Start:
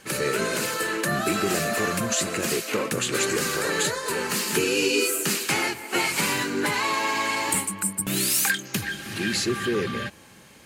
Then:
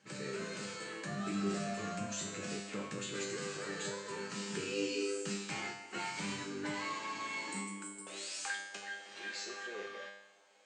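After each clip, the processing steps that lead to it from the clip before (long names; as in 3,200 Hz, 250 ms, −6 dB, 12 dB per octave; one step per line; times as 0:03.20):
Butterworth low-pass 8,300 Hz 72 dB per octave
high-pass filter sweep 140 Hz → 580 Hz, 0:07.26–0:08.17
tuned comb filter 100 Hz, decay 0.8 s, harmonics all, mix 90%
level −3.5 dB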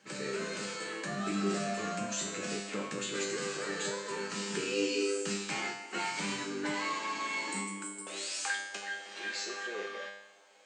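high-pass filter 190 Hz 12 dB per octave
level +5 dB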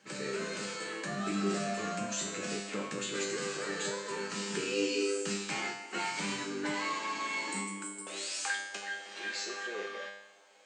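no processing that can be heard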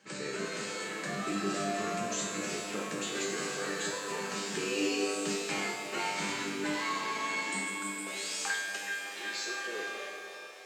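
reverb with rising layers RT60 3.6 s, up +7 semitones, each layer −8 dB, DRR 5 dB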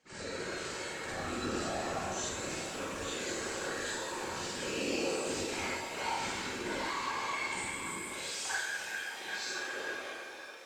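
random phases in short frames
convolution reverb RT60 0.45 s, pre-delay 41 ms, DRR −6 dB
level −9 dB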